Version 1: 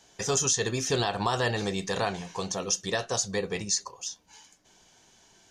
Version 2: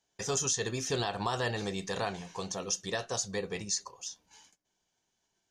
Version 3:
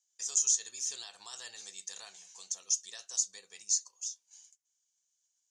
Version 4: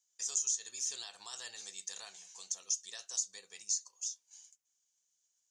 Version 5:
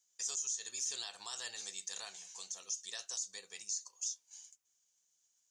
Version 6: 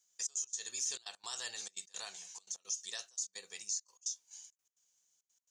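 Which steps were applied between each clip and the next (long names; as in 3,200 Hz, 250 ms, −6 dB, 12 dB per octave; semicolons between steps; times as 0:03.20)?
noise gate −56 dBFS, range −16 dB; level −5 dB
resonant band-pass 7,200 Hz, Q 2.9; level +6.5 dB
downward compressor 2.5 to 1, threshold −32 dBFS, peak gain reduction 6.5 dB
brickwall limiter −30.5 dBFS, peak gain reduction 11 dB; level +2.5 dB
gate pattern "xxx.x.xx" 170 BPM −24 dB; level +1.5 dB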